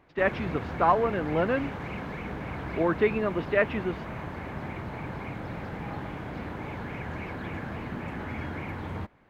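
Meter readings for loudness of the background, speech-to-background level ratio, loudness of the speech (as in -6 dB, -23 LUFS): -36.5 LUFS, 9.0 dB, -27.5 LUFS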